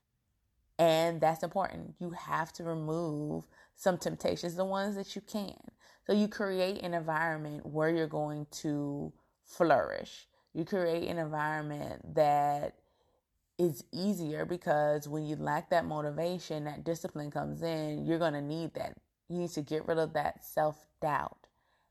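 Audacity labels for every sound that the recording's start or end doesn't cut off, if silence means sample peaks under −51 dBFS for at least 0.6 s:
0.790000	12.700000	sound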